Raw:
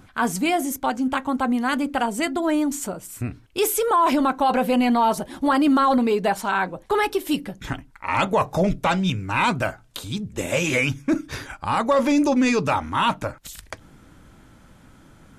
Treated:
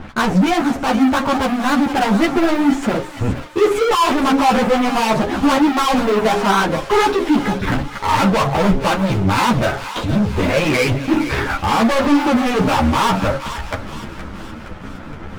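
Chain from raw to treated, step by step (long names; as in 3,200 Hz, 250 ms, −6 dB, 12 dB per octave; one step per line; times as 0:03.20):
low-pass filter 1,800 Hz 12 dB per octave
hum removal 136.5 Hz, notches 6
in parallel at +2 dB: brickwall limiter −20.5 dBFS, peak gain reduction 10.5 dB
on the sum: leveller curve on the samples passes 5
flanger 1.4 Hz, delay 3.9 ms, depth 7.4 ms, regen −75%
feedback echo with a high-pass in the loop 468 ms, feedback 57%, high-pass 990 Hz, level −10 dB
string-ensemble chorus
level +2 dB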